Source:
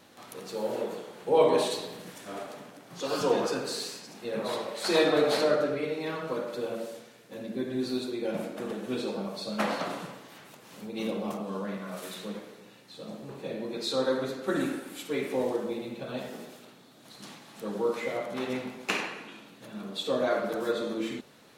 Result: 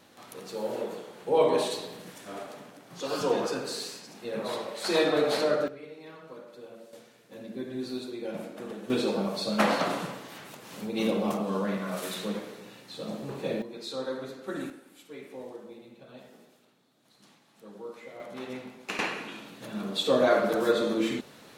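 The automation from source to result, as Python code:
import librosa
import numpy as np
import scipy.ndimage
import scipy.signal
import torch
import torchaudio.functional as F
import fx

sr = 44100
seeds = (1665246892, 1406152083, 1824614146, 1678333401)

y = fx.gain(x, sr, db=fx.steps((0.0, -1.0), (5.68, -13.0), (6.93, -4.0), (8.9, 5.0), (13.62, -6.5), (14.7, -13.0), (18.2, -6.0), (18.99, 5.0)))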